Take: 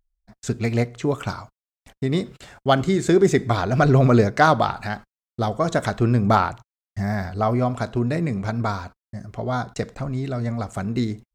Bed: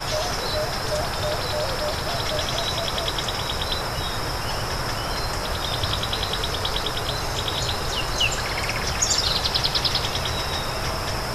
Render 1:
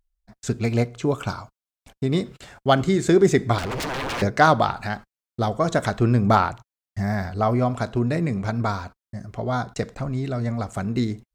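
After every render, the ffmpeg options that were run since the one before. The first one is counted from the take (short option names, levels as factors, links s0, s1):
-filter_complex "[0:a]asettb=1/sr,asplit=3[s0][s1][s2];[s0]atrim=end=0.604[s3];[s1]atrim=start=0.6:end=2.16,asetpts=PTS-STARTPTS,afade=t=in:d=0.004:c=qsin,afade=t=out:st=1.556:d=0.004:c=qsin,bandreject=f=1900:w=6.7[s4];[s2]atrim=start=2.156[s5];[s3][s4]acrossfade=d=0.004:c1=hsin:c2=qsin[s6];[s6][s5]acrossfade=d=0.004:c1=qsin:c2=hsin,asettb=1/sr,asplit=3[s7][s8][s9];[s7]atrim=end=3.584[s10];[s8]atrim=start=3.58:end=4.22,asetpts=PTS-STARTPTS,afade=t=in:d=0.004:c=qsin,afade=t=out:st=0.636:d=0.004:c=qsin,aeval=exprs='0.0708*(abs(mod(val(0)/0.0708+3,4)-2)-1)':c=same[s11];[s9]atrim=start=4.216[s12];[s10][s11]acrossfade=d=0.004:c1=hsin:c2=qsin[s13];[s13][s12]acrossfade=d=0.004:c1=qsin:c2=hsin"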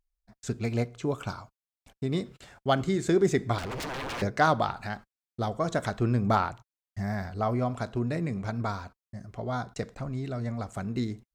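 -af "volume=0.447"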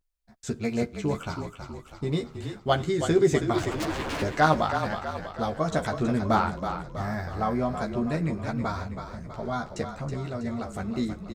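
-filter_complex "[0:a]asplit=2[s0][s1];[s1]adelay=13,volume=0.668[s2];[s0][s2]amix=inputs=2:normalize=0,asplit=2[s3][s4];[s4]asplit=6[s5][s6][s7][s8][s9][s10];[s5]adelay=323,afreqshift=-32,volume=0.398[s11];[s6]adelay=646,afreqshift=-64,volume=0.214[s12];[s7]adelay=969,afreqshift=-96,volume=0.116[s13];[s8]adelay=1292,afreqshift=-128,volume=0.0624[s14];[s9]adelay=1615,afreqshift=-160,volume=0.0339[s15];[s10]adelay=1938,afreqshift=-192,volume=0.0182[s16];[s11][s12][s13][s14][s15][s16]amix=inputs=6:normalize=0[s17];[s3][s17]amix=inputs=2:normalize=0"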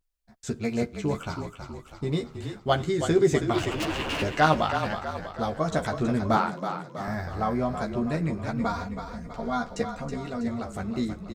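-filter_complex "[0:a]asettb=1/sr,asplit=3[s0][s1][s2];[s0]atrim=end=3.494[s3];[s1]atrim=start=3.49:end=4.93,asetpts=PTS-STARTPTS,afade=t=in:d=0.004:c=qsin,afade=t=out:st=1.436:d=0.004:c=qsin,equalizer=f=2800:t=o:w=0.33:g=10.5[s4];[s2]atrim=start=4.926[s5];[s3][s4]acrossfade=d=0.004:c1=hsin:c2=qsin[s6];[s6][s5]acrossfade=d=0.004:c1=qsin:c2=hsin,asettb=1/sr,asplit=3[s7][s8][s9];[s7]atrim=end=6.374[s10];[s8]atrim=start=6.37:end=7.08,asetpts=PTS-STARTPTS,afade=t=in:d=0.004:c=qsin,afade=t=out:st=0.706:d=0.004:c=qsin,highpass=f=150:w=0.5412,highpass=f=150:w=1.3066[s11];[s9]atrim=start=7.076[s12];[s10][s11]acrossfade=d=0.004:c1=hsin:c2=qsin[s13];[s13][s12]acrossfade=d=0.004:c1=qsin:c2=hsin,asettb=1/sr,asplit=3[s14][s15][s16];[s14]atrim=end=8.594[s17];[s15]atrim=start=8.59:end=10.48,asetpts=PTS-STARTPTS,afade=t=in:d=0.004:c=qsin,afade=t=out:st=1.886:d=0.004:c=qsin,aecho=1:1:4.2:0.65,atrim=end_sample=83349[s18];[s16]atrim=start=10.476[s19];[s17][s18]acrossfade=d=0.004:c1=hsin:c2=qsin[s20];[s20][s19]acrossfade=d=0.004:c1=qsin:c2=hsin"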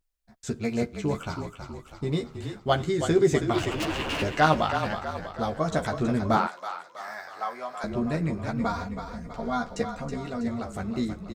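-filter_complex "[0:a]asettb=1/sr,asplit=3[s0][s1][s2];[s0]atrim=end=6.474[s3];[s1]atrim=start=6.47:end=7.84,asetpts=PTS-STARTPTS,afade=t=in:d=0.004:c=qsin,afade=t=out:st=1.366:d=0.004:c=qsin,highpass=870[s4];[s2]atrim=start=7.836[s5];[s3][s4]acrossfade=d=0.004:c1=hsin:c2=qsin[s6];[s6][s5]acrossfade=d=0.004:c1=qsin:c2=hsin"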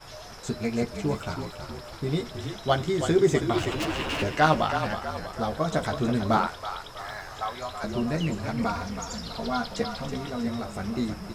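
-filter_complex "[1:a]volume=0.126[s0];[0:a][s0]amix=inputs=2:normalize=0"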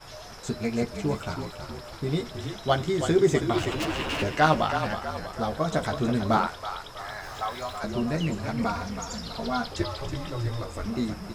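-filter_complex "[0:a]asettb=1/sr,asplit=3[s0][s1][s2];[s0]atrim=end=7.234[s3];[s1]atrim=start=7.23:end=7.79,asetpts=PTS-STARTPTS,afade=t=in:d=0.004:c=qsin,afade=t=out:st=0.556:d=0.004:c=qsin,aeval=exprs='val(0)+0.5*0.00562*sgn(val(0))':c=same[s4];[s2]atrim=start=7.786[s5];[s3][s4]acrossfade=d=0.004:c1=hsin:c2=qsin[s6];[s6][s5]acrossfade=d=0.004:c1=qsin:c2=hsin,asettb=1/sr,asplit=3[s7][s8][s9];[s7]atrim=end=9.714[s10];[s8]atrim=start=9.71:end=10.86,asetpts=PTS-STARTPTS,afade=t=in:d=0.004:c=qsin,afade=t=out:st=1.146:d=0.004:c=qsin,afreqshift=-120[s11];[s9]atrim=start=10.856[s12];[s10][s11]acrossfade=d=0.004:c1=hsin:c2=qsin[s13];[s13][s12]acrossfade=d=0.004:c1=qsin:c2=hsin"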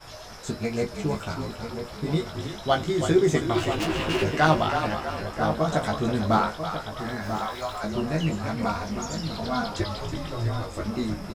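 -filter_complex "[0:a]asplit=2[s0][s1];[s1]adelay=19,volume=0.531[s2];[s0][s2]amix=inputs=2:normalize=0,asplit=2[s3][s4];[s4]adelay=991.3,volume=0.398,highshelf=f=4000:g=-22.3[s5];[s3][s5]amix=inputs=2:normalize=0"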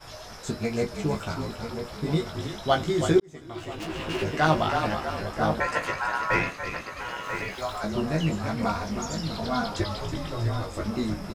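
-filter_complex "[0:a]asettb=1/sr,asplit=3[s0][s1][s2];[s0]atrim=end=5.604[s3];[s1]atrim=start=5.6:end=7.58,asetpts=PTS-STARTPTS,afade=t=in:d=0.004:c=qsin,afade=t=out:st=1.976:d=0.004:c=qsin,aeval=exprs='val(0)*sin(2*PI*1200*n/s)':c=same[s4];[s2]atrim=start=7.576[s5];[s3][s4]acrossfade=d=0.004:c1=hsin:c2=qsin[s6];[s6][s5]acrossfade=d=0.004:c1=qsin:c2=hsin,asplit=2[s7][s8];[s7]atrim=end=3.2,asetpts=PTS-STARTPTS,afade=t=out:st=3.196:d=0.004:c=hsin[s9];[s8]atrim=start=3.2,asetpts=PTS-STARTPTS,afade=t=in:d=1.6[s10];[s9][s10]concat=n=2:v=0:a=1"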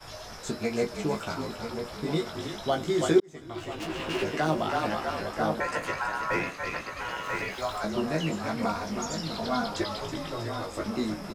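-filter_complex "[0:a]acrossover=split=180|540|6400[s0][s1][s2][s3];[s0]acompressor=threshold=0.00631:ratio=6[s4];[s2]alimiter=limit=0.0944:level=0:latency=1:release=247[s5];[s4][s1][s5][s3]amix=inputs=4:normalize=0"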